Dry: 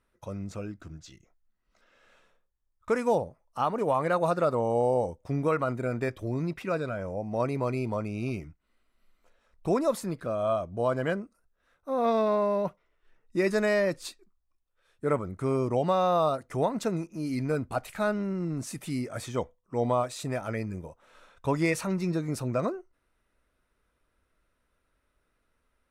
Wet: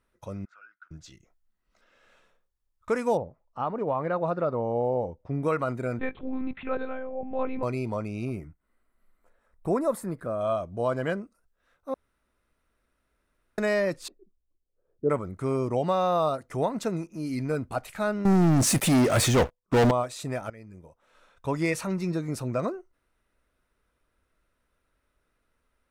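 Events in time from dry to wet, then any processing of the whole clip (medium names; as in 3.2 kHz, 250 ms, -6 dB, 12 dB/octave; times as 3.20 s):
0.45–0.91 s: ladder band-pass 1.5 kHz, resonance 85%
3.17–5.43 s: tape spacing loss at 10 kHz 29 dB
5.99–7.63 s: monotone LPC vocoder at 8 kHz 260 Hz
8.25–10.41 s: high-order bell 4 kHz -9.5 dB
11.94–13.58 s: room tone
14.08–15.10 s: resonant low-pass 440 Hz, resonance Q 1.7
18.25–19.91 s: waveshaping leveller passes 5
20.50–21.74 s: fade in, from -18 dB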